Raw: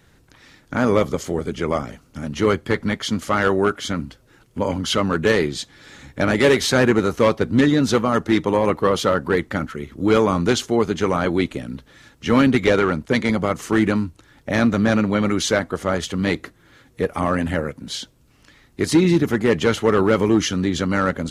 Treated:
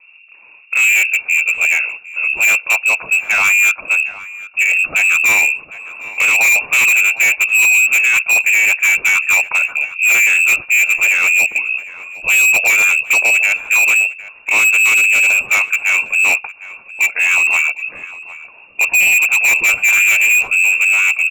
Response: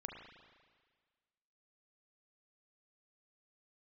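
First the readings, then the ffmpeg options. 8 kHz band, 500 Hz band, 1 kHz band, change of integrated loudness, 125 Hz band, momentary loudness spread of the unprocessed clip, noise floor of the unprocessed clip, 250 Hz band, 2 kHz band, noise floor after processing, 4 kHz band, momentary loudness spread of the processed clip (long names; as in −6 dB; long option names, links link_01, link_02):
+14.0 dB, −16.5 dB, −3.0 dB, +9.0 dB, below −20 dB, 12 LU, −55 dBFS, below −25 dB, +17.5 dB, −43 dBFS, +2.0 dB, 11 LU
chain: -filter_complex "[0:a]lowshelf=frequency=670:width_type=q:width=1.5:gain=13,acrossover=split=160|1300[link_01][link_02][link_03];[link_03]dynaudnorm=framelen=150:gausssize=17:maxgain=11.5dB[link_04];[link_01][link_02][link_04]amix=inputs=3:normalize=0,lowpass=frequency=2400:width_type=q:width=0.5098,lowpass=frequency=2400:width_type=q:width=0.6013,lowpass=frequency=2400:width_type=q:width=0.9,lowpass=frequency=2400:width_type=q:width=2.563,afreqshift=-2800,asoftclip=type=hard:threshold=-6.5dB,asplit=2[link_05][link_06];[link_06]adelay=758,volume=-14dB,highshelf=frequency=4000:gain=-17.1[link_07];[link_05][link_07]amix=inputs=2:normalize=0,volume=-3dB"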